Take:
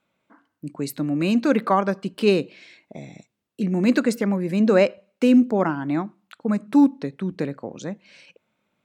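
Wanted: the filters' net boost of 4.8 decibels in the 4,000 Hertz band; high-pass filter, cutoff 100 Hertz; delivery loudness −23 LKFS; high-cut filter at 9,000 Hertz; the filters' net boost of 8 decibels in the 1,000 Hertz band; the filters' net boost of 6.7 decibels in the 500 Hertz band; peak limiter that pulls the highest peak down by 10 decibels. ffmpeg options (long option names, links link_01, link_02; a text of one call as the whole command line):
ffmpeg -i in.wav -af "highpass=100,lowpass=9000,equalizer=frequency=500:width_type=o:gain=6,equalizer=frequency=1000:width_type=o:gain=8,equalizer=frequency=4000:width_type=o:gain=5.5,volume=-1.5dB,alimiter=limit=-11dB:level=0:latency=1" out.wav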